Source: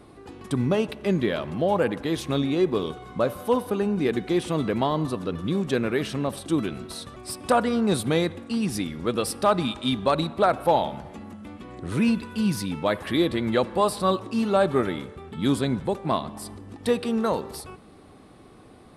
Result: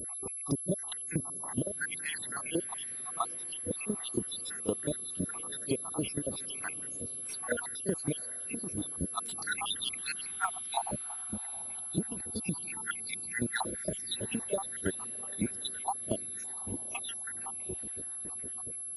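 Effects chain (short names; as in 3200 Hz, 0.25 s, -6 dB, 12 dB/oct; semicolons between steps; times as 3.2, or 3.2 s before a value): random spectral dropouts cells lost 85%; pre-echo 33 ms -18.5 dB; compressor 10:1, threshold -33 dBFS, peak gain reduction 15.5 dB; HPF 48 Hz; tone controls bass -2 dB, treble +3 dB; on a send: diffused feedback echo 0.765 s, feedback 43%, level -12.5 dB; on the sum: harmonic-percussive split harmonic -15 dB; low shelf 110 Hz +6 dB; pulse-width modulation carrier 11000 Hz; gain +5 dB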